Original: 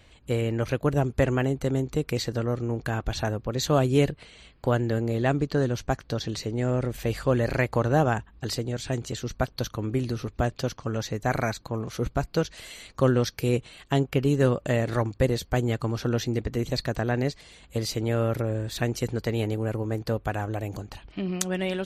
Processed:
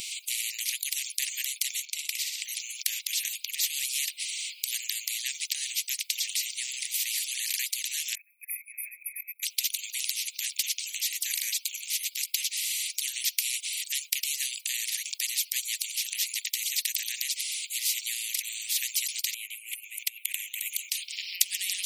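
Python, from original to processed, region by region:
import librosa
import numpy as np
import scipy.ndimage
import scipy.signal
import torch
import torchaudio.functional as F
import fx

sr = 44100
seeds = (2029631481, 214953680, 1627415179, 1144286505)

y = fx.chain(x, sr, fx.lowpass(hz=1200.0, slope=6),
    fx.room_flutter(wall_m=10.3, rt60_s=0.47), at=(1.85, 2.42))
y = fx.chain(y, sr, fx.level_steps(step_db=21),
    fx.brickwall_bandstop(low_hz=2600.0, high_hz=9600.0), at=(8.15, 9.43))
y = fx.chain(y, sr, fx.curve_eq(hz=(160.0, 230.0, 1400.0, 2300.0, 4800.0, 9600.0), db=(0, 4, -11, 7, -27, -6)),
    fx.over_compress(threshold_db=-32.0, ratio=-0.5), at=(19.34, 20.89))
y = scipy.signal.sosfilt(scipy.signal.butter(16, 2300.0, 'highpass', fs=sr, output='sos'), y)
y = fx.high_shelf(y, sr, hz=4600.0, db=11.0)
y = fx.spectral_comp(y, sr, ratio=4.0)
y = F.gain(torch.from_numpy(y), -2.5).numpy()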